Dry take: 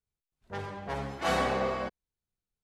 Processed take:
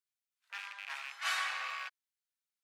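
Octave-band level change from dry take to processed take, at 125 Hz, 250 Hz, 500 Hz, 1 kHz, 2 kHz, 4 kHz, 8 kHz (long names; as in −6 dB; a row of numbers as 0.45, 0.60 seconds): below −40 dB, below −40 dB, −28.0 dB, −9.0 dB, 0.0 dB, +0.5 dB, 0.0 dB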